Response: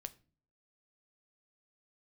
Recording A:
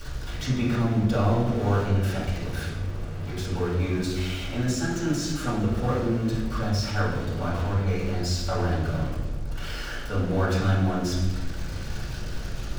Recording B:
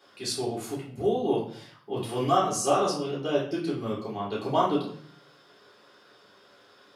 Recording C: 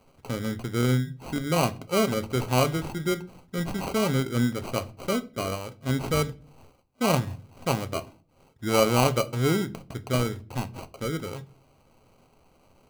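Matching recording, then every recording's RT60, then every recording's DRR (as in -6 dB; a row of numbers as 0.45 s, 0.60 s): C; 1.2 s, 0.55 s, no single decay rate; -10.0 dB, -7.0 dB, 11.0 dB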